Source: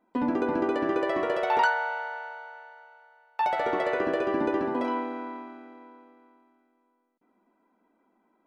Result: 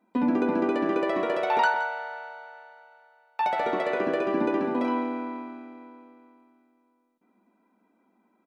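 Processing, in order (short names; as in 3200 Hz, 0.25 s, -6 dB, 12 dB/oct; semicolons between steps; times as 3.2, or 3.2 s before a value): low shelf 160 Hz -10 dB; small resonant body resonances 200/2400/3800 Hz, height 10 dB, ringing for 35 ms; on a send: tapped delay 61/170 ms -18.5/-15.5 dB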